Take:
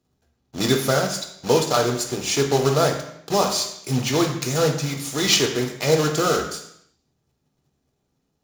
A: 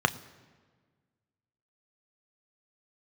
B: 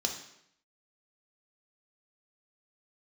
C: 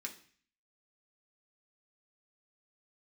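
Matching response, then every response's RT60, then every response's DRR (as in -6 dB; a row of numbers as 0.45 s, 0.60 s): B; 1.5 s, 0.75 s, 0.45 s; 10.0 dB, 2.0 dB, 0.0 dB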